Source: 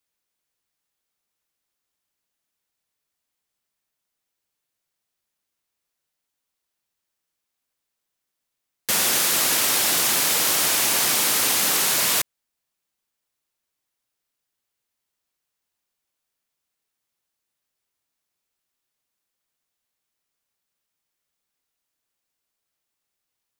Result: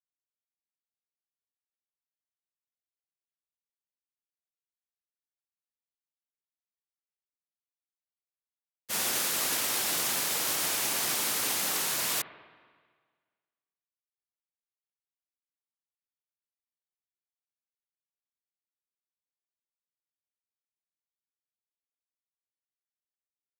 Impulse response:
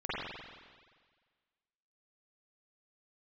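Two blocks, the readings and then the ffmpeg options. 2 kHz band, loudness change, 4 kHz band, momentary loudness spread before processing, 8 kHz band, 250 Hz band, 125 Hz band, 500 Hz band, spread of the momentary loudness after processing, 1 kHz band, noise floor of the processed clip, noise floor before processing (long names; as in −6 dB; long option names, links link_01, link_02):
−9.0 dB, −9.5 dB, −9.5 dB, 4 LU, −9.5 dB, −8.5 dB, −8.5 dB, −8.5 dB, 3 LU, −8.5 dB, below −85 dBFS, −82 dBFS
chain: -filter_complex "[0:a]agate=range=-33dB:threshold=-12dB:ratio=3:detection=peak,asplit=2[link_01][link_02];[1:a]atrim=start_sample=2205,lowpass=2200[link_03];[link_02][link_03]afir=irnorm=-1:irlink=0,volume=-17dB[link_04];[link_01][link_04]amix=inputs=2:normalize=0,volume=1dB"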